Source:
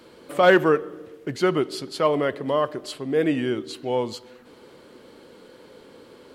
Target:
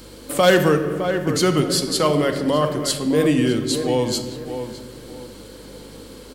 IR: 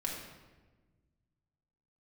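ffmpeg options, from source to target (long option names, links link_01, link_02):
-filter_complex "[0:a]bass=frequency=250:gain=7,treble=frequency=4000:gain=14,asplit=2[link_01][link_02];[link_02]adelay=610,lowpass=frequency=2300:poles=1,volume=-11dB,asplit=2[link_03][link_04];[link_04]adelay=610,lowpass=frequency=2300:poles=1,volume=0.3,asplit=2[link_05][link_06];[link_06]adelay=610,lowpass=frequency=2300:poles=1,volume=0.3[link_07];[link_01][link_03][link_05][link_07]amix=inputs=4:normalize=0,asplit=2[link_08][link_09];[1:a]atrim=start_sample=2205[link_10];[link_09][link_10]afir=irnorm=-1:irlink=0,volume=-4dB[link_11];[link_08][link_11]amix=inputs=2:normalize=0,acrossover=split=170|3000[link_12][link_13][link_14];[link_13]acompressor=threshold=-20dB:ratio=1.5[link_15];[link_12][link_15][link_14]amix=inputs=3:normalize=0,aeval=exprs='val(0)+0.00501*(sin(2*PI*50*n/s)+sin(2*PI*2*50*n/s)/2+sin(2*PI*3*50*n/s)/3+sin(2*PI*4*50*n/s)/4+sin(2*PI*5*50*n/s)/5)':channel_layout=same"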